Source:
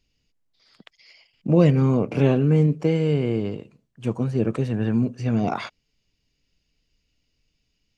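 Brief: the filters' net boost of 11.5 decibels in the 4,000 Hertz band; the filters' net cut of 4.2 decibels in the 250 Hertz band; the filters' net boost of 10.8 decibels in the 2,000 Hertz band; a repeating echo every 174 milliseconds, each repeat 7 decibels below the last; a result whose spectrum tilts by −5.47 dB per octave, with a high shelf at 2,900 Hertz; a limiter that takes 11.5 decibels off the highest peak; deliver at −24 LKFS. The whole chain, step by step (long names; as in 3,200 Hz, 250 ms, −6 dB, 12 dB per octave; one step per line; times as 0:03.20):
parametric band 250 Hz −6.5 dB
parametric band 2,000 Hz +9 dB
high-shelf EQ 2,900 Hz +5 dB
parametric band 4,000 Hz +8 dB
brickwall limiter −16 dBFS
repeating echo 174 ms, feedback 45%, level −7 dB
level +1.5 dB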